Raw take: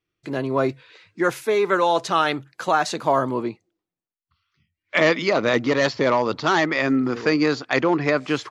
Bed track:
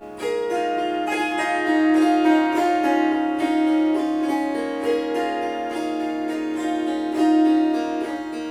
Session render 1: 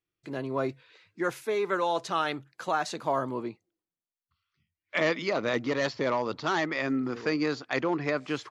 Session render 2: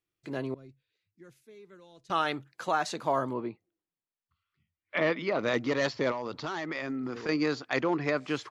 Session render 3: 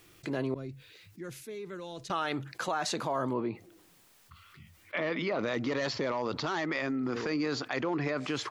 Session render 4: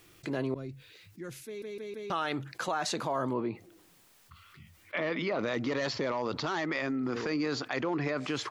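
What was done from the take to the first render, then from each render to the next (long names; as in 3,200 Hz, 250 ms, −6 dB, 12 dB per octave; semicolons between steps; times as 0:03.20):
level −8.5 dB
0:00.54–0:02.10: guitar amp tone stack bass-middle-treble 10-0-1; 0:03.33–0:05.39: high-frequency loss of the air 210 metres; 0:06.11–0:07.29: downward compressor, threshold −30 dBFS
brickwall limiter −23 dBFS, peak gain reduction 9 dB; envelope flattener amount 50%
0:01.46: stutter in place 0.16 s, 4 plays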